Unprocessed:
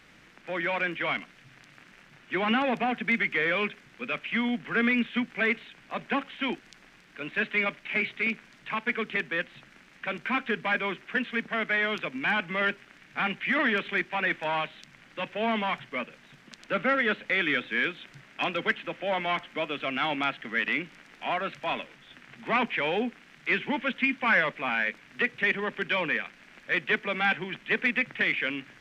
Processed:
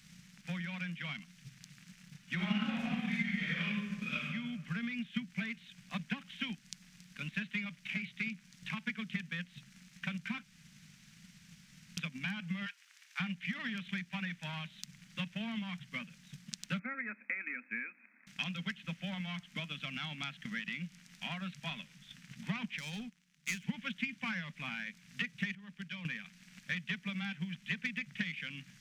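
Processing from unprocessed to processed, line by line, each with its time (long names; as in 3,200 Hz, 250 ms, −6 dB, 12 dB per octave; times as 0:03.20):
0:02.35–0:04.24: thrown reverb, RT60 1.1 s, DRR −11 dB
0:10.43–0:11.97: fill with room tone
0:12.66–0:13.20: Butterworth high-pass 850 Hz 48 dB per octave
0:16.79–0:18.27: linear-phase brick-wall band-pass 220–2,600 Hz
0:22.78–0:23.64: power curve on the samples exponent 1.4
0:25.55–0:26.05: clip gain −11 dB
whole clip: drawn EQ curve 100 Hz 0 dB, 180 Hz +12 dB, 350 Hz −22 dB, 2,800 Hz −2 dB, 5,900 Hz +9 dB; downward compressor 2.5 to 1, threshold −36 dBFS; transient designer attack +6 dB, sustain −2 dB; level −4 dB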